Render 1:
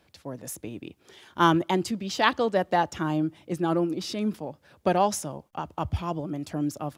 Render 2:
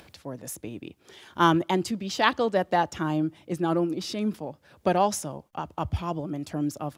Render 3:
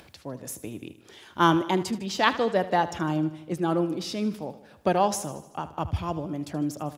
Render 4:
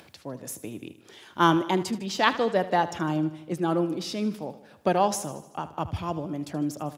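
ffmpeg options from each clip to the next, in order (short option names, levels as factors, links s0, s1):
-af "acompressor=mode=upward:threshold=0.00708:ratio=2.5"
-af "aecho=1:1:77|154|231|308|385|462:0.178|0.103|0.0598|0.0347|0.0201|0.0117"
-af "highpass=100"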